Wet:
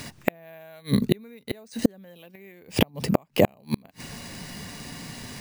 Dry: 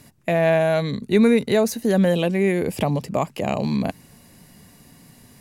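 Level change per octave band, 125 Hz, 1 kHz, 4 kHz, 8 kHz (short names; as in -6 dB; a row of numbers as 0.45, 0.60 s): -5.0, -8.0, -1.0, -3.5 dB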